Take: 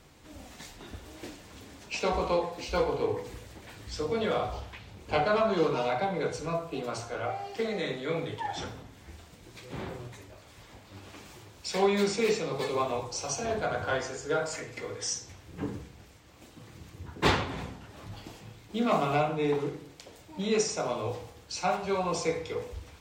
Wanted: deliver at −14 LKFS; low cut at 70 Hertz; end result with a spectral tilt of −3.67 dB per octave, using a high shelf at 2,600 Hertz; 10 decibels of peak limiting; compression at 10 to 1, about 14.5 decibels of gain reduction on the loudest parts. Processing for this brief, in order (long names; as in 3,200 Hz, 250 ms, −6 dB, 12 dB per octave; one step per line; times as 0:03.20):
high-pass filter 70 Hz
high-shelf EQ 2,600 Hz +5 dB
downward compressor 10 to 1, threshold −35 dBFS
level +28.5 dB
brickwall limiter −4 dBFS